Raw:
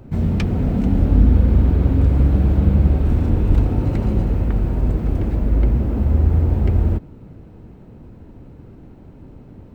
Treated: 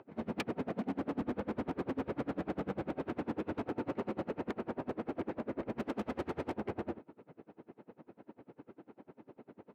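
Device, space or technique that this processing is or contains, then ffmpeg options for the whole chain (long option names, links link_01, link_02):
helicopter radio: -filter_complex "[0:a]highpass=330,lowpass=2500,aeval=exprs='val(0)*pow(10,-30*(0.5-0.5*cos(2*PI*10*n/s))/20)':channel_layout=same,asoftclip=type=hard:threshold=-30.5dB,highpass=frequency=130:poles=1,asettb=1/sr,asplit=3[link_01][link_02][link_03];[link_01]atrim=end=5.784[link_04];[link_02]atrim=start=5.78:end=6.54,asetpts=PTS-STARTPTS,afade=type=in:duration=0.004:curve=qsin,afade=type=out:start_time=0.756:duration=0.004:curve=qsin,highshelf=frequency=2200:gain=11.5[link_05];[link_03]atrim=start=6.536[link_06];[link_04][link_05]acrossfade=duration=0.004:curve1=hsin:curve2=qsin[link_07];[link_07][link_06]acrossfade=duration=0.004:curve1=qsin:curve2=hsin,volume=1dB"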